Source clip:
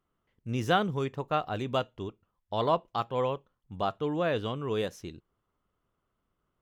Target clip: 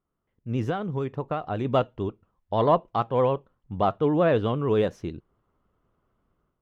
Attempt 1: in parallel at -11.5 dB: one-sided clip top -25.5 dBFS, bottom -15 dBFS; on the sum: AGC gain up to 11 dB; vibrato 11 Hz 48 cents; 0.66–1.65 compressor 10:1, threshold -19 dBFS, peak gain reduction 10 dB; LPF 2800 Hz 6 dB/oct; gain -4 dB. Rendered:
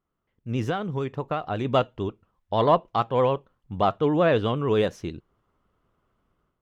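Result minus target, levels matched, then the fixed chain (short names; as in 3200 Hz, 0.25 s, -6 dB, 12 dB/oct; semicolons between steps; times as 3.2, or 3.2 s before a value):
2000 Hz band +2.5 dB
in parallel at -11.5 dB: one-sided clip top -25.5 dBFS, bottom -15 dBFS; on the sum: AGC gain up to 11 dB; vibrato 11 Hz 48 cents; 0.66–1.65 compressor 10:1, threshold -19 dBFS, peak gain reduction 10 dB; LPF 1200 Hz 6 dB/oct; gain -4 dB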